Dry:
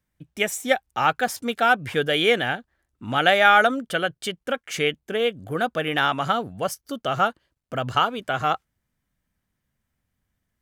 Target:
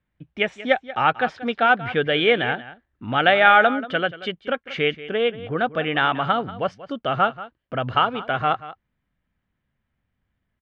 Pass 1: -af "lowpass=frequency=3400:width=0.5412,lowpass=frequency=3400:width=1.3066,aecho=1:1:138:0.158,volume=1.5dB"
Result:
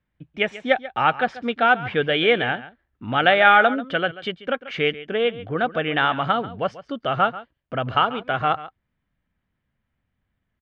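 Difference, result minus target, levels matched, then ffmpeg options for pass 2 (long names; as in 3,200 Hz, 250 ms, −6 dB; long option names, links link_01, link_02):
echo 46 ms early
-af "lowpass=frequency=3400:width=0.5412,lowpass=frequency=3400:width=1.3066,aecho=1:1:184:0.158,volume=1.5dB"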